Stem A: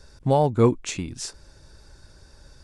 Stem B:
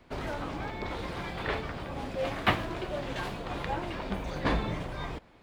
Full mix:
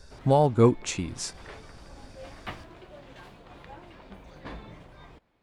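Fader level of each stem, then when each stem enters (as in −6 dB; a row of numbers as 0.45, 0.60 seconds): −1.0, −13.0 decibels; 0.00, 0.00 seconds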